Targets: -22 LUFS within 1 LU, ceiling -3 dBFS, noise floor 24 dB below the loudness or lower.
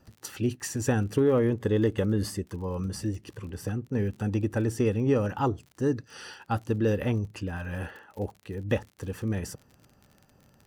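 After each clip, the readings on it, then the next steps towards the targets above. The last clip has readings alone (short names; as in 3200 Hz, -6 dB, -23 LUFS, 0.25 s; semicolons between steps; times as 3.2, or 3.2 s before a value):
ticks 43/s; loudness -29.0 LUFS; peak -13.5 dBFS; loudness target -22.0 LUFS
-> de-click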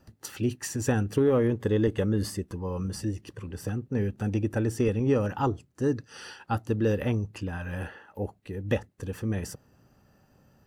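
ticks 0.38/s; loudness -29.0 LUFS; peak -13.5 dBFS; loudness target -22.0 LUFS
-> gain +7 dB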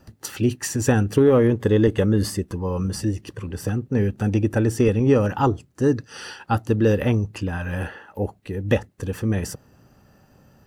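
loudness -22.0 LUFS; peak -6.5 dBFS; noise floor -57 dBFS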